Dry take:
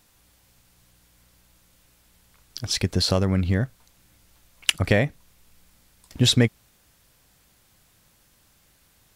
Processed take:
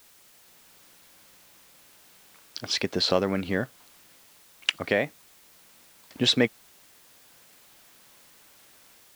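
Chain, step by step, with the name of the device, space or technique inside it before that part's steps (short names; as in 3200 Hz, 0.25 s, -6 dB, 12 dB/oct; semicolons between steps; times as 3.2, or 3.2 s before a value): dictaphone (BPF 280–4300 Hz; AGC gain up to 8.5 dB; wow and flutter; white noise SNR 24 dB); gain -5 dB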